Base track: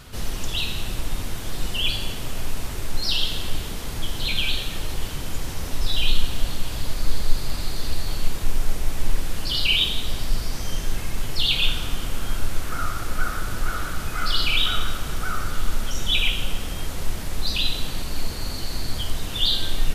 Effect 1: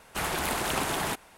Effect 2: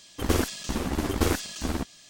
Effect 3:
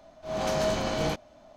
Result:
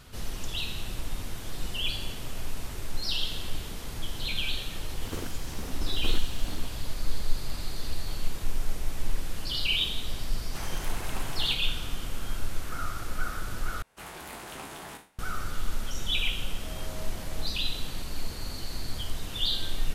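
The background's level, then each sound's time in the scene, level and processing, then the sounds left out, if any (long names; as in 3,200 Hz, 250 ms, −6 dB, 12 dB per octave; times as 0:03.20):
base track −7 dB
0:00.77: mix in 2 −16 dB + guitar amp tone stack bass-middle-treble 10-0-1
0:04.83: mix in 2 −13.5 dB
0:10.39: mix in 1 −11 dB
0:13.82: overwrite with 1 −14 dB + peak hold with a decay on every bin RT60 0.37 s
0:16.35: mix in 3 −18 dB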